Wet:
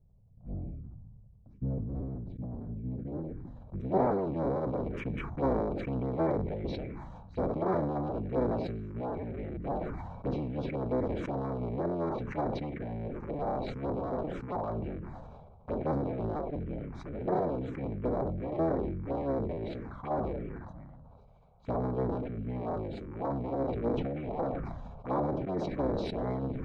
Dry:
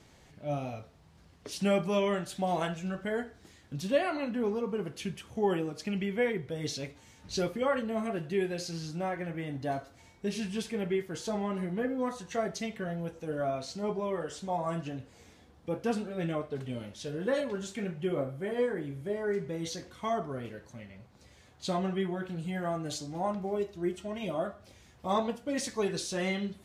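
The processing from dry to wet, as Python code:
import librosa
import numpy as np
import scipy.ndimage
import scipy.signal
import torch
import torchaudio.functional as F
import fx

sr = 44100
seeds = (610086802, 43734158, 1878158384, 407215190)

y = fx.cycle_switch(x, sr, every=3, mode='inverted')
y = fx.small_body(y, sr, hz=(2300.0, 3900.0), ring_ms=35, db=13)
y = fx.env_phaser(y, sr, low_hz=280.0, high_hz=2700.0, full_db=-27.5)
y = fx.filter_sweep_lowpass(y, sr, from_hz=190.0, to_hz=910.0, start_s=2.62, end_s=4.24, q=0.77)
y = fx.sustainer(y, sr, db_per_s=28.0)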